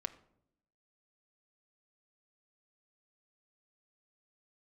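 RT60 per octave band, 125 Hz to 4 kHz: 0.95, 1.0, 0.85, 0.60, 0.50, 0.40 seconds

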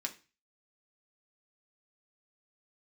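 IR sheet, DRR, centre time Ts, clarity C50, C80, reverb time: 2.0 dB, 7 ms, 15.5 dB, 20.5 dB, 0.30 s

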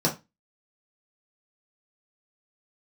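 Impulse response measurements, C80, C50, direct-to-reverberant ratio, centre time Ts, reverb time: 20.5 dB, 12.5 dB, −4.0 dB, 16 ms, 0.20 s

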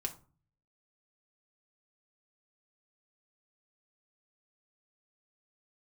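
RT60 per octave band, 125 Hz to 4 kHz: 0.80, 0.60, 0.40, 0.40, 0.25, 0.25 seconds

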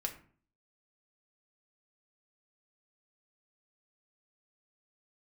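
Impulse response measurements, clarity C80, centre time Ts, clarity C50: 15.5 dB, 11 ms, 11.5 dB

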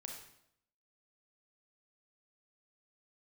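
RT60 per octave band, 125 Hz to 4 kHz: 0.80, 0.80, 0.75, 0.70, 0.65, 0.65 seconds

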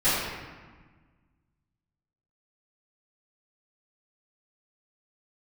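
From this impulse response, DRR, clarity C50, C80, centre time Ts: −16.5 dB, −1.5 dB, 1.0 dB, 100 ms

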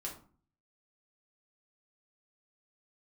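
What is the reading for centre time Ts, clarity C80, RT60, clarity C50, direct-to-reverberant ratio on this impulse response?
21 ms, 13.5 dB, 0.45 s, 8.0 dB, −2.5 dB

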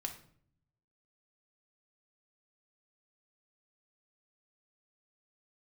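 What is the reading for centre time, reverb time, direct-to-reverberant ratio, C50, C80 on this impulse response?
13 ms, 0.60 s, 3.0 dB, 10.0 dB, 14.0 dB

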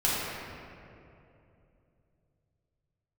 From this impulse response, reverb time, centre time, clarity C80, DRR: 2.8 s, 163 ms, −1.5 dB, −9.5 dB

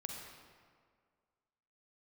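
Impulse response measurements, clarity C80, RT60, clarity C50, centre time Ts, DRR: 3.0 dB, 1.9 s, 1.5 dB, 76 ms, 0.5 dB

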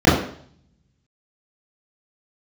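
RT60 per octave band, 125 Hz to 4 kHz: 0.95, 0.60, 0.60, 0.55, 0.55, 0.60 seconds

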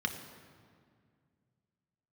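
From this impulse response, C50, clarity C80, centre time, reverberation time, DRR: 8.5 dB, 9.5 dB, 25 ms, 2.1 s, 4.5 dB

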